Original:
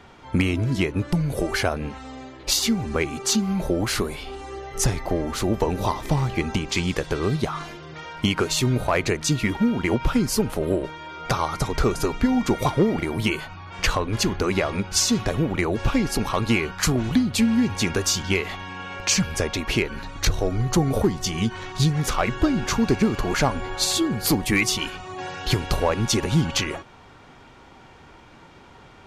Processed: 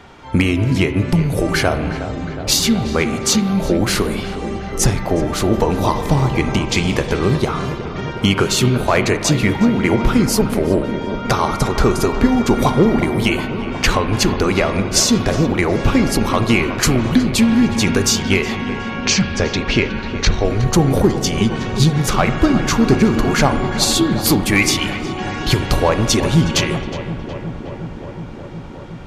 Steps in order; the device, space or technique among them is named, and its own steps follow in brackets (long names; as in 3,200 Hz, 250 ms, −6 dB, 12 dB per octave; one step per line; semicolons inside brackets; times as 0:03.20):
dub delay into a spring reverb (feedback echo with a low-pass in the loop 365 ms, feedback 83%, low-pass 2,100 Hz, level −11.5 dB; spring reverb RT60 1.6 s, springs 30/41 ms, chirp 50 ms, DRR 9.5 dB)
0:18.90–0:20.45: low-pass filter 6,100 Hz 24 dB per octave
level +6 dB